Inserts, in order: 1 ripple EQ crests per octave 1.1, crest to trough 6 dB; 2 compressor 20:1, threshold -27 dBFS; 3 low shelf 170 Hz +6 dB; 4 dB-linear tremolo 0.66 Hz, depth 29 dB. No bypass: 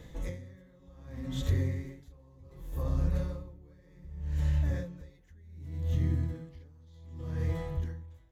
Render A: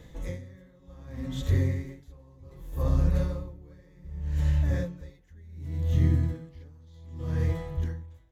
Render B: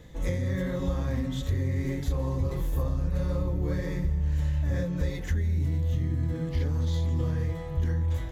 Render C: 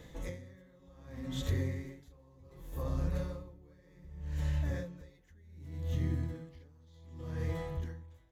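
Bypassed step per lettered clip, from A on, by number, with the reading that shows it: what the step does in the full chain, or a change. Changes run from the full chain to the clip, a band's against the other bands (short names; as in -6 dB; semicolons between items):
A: 2, mean gain reduction 3.5 dB; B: 4, momentary loudness spread change -18 LU; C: 3, 125 Hz band -4.5 dB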